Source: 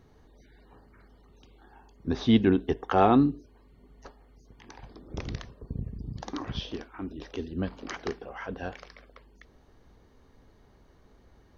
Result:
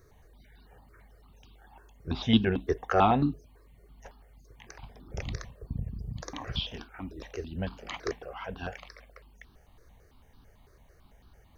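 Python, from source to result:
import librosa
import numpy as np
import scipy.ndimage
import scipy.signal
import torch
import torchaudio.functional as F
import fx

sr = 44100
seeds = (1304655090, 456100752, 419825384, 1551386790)

y = fx.high_shelf(x, sr, hz=3900.0, db=10.0)
y = fx.phaser_held(y, sr, hz=9.0, low_hz=820.0, high_hz=2000.0)
y = y * librosa.db_to_amplitude(1.5)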